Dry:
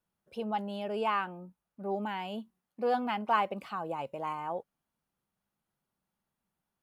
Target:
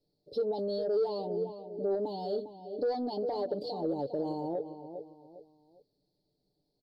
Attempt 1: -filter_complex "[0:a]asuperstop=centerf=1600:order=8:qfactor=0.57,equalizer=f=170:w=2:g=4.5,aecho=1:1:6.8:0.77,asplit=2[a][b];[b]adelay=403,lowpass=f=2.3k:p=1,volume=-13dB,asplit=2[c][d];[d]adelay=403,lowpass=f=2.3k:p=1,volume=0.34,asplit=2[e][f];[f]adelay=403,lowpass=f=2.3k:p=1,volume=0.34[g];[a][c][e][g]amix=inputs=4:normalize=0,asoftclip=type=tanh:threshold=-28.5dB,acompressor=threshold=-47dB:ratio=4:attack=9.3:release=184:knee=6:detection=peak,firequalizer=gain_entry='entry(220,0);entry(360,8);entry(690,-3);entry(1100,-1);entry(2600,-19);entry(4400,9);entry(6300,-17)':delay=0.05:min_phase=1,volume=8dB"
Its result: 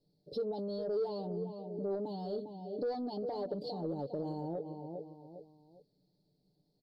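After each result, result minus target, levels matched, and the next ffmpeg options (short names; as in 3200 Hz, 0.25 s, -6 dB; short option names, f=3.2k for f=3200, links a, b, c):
125 Hz band +7.0 dB; compressor: peak gain reduction +5 dB
-filter_complex "[0:a]asuperstop=centerf=1600:order=8:qfactor=0.57,equalizer=f=170:w=2:g=-5.5,aecho=1:1:6.8:0.77,asplit=2[a][b];[b]adelay=403,lowpass=f=2.3k:p=1,volume=-13dB,asplit=2[c][d];[d]adelay=403,lowpass=f=2.3k:p=1,volume=0.34,asplit=2[e][f];[f]adelay=403,lowpass=f=2.3k:p=1,volume=0.34[g];[a][c][e][g]amix=inputs=4:normalize=0,asoftclip=type=tanh:threshold=-28.5dB,acompressor=threshold=-47dB:ratio=4:attack=9.3:release=184:knee=6:detection=peak,firequalizer=gain_entry='entry(220,0);entry(360,8);entry(690,-3);entry(1100,-1);entry(2600,-19);entry(4400,9);entry(6300,-17)':delay=0.05:min_phase=1,volume=8dB"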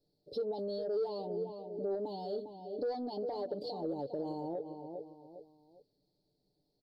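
compressor: peak gain reduction +5 dB
-filter_complex "[0:a]asuperstop=centerf=1600:order=8:qfactor=0.57,equalizer=f=170:w=2:g=-5.5,aecho=1:1:6.8:0.77,asplit=2[a][b];[b]adelay=403,lowpass=f=2.3k:p=1,volume=-13dB,asplit=2[c][d];[d]adelay=403,lowpass=f=2.3k:p=1,volume=0.34,asplit=2[e][f];[f]adelay=403,lowpass=f=2.3k:p=1,volume=0.34[g];[a][c][e][g]amix=inputs=4:normalize=0,asoftclip=type=tanh:threshold=-28.5dB,acompressor=threshold=-40.5dB:ratio=4:attack=9.3:release=184:knee=6:detection=peak,firequalizer=gain_entry='entry(220,0);entry(360,8);entry(690,-3);entry(1100,-1);entry(2600,-19);entry(4400,9);entry(6300,-17)':delay=0.05:min_phase=1,volume=8dB"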